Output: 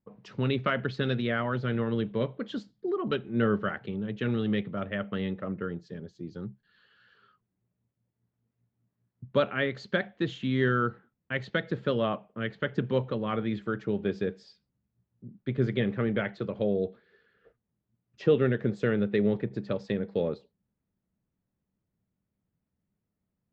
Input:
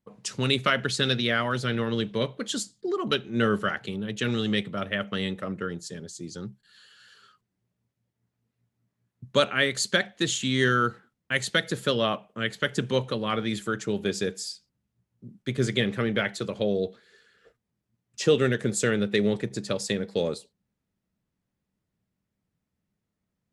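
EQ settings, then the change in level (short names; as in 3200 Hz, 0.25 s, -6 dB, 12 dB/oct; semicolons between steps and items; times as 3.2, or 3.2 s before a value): air absorption 190 m; tape spacing loss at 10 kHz 30 dB; high shelf 5100 Hz +7 dB; 0.0 dB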